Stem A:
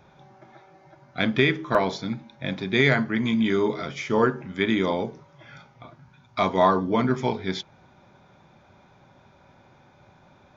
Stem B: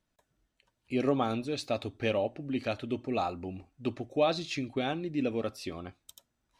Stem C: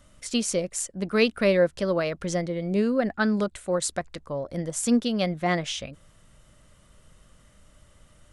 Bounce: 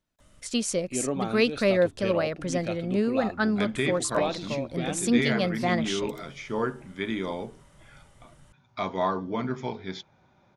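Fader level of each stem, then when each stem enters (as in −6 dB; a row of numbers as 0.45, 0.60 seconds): −7.5, −2.0, −1.5 decibels; 2.40, 0.00, 0.20 seconds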